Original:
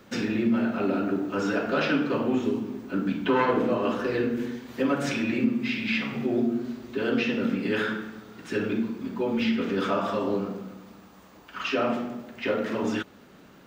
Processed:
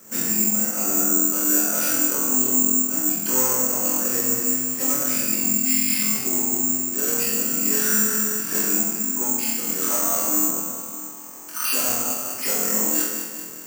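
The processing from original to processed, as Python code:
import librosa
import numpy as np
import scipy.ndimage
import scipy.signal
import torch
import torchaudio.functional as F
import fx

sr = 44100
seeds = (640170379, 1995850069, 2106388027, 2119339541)

y = scipy.signal.sosfilt(scipy.signal.butter(2, 3700.0, 'lowpass', fs=sr, output='sos'), x)
y = fx.low_shelf(y, sr, hz=180.0, db=-4.5)
y = fx.notch(y, sr, hz=400.0, q=12.0)
y = fx.echo_feedback(y, sr, ms=202, feedback_pct=51, wet_db=-10.5)
y = fx.rider(y, sr, range_db=10, speed_s=0.5)
y = fx.cheby_harmonics(y, sr, harmonics=(5,), levels_db=(-8,), full_scale_db=-13.5)
y = scipy.signal.sosfilt(scipy.signal.butter(4, 110.0, 'highpass', fs=sr, output='sos'), y)
y = fx.room_flutter(y, sr, wall_m=4.0, rt60_s=0.74)
y = (np.kron(scipy.signal.resample_poly(y, 1, 6), np.eye(6)[0]) * 6)[:len(y)]
y = F.gain(torch.from_numpy(y), -13.0).numpy()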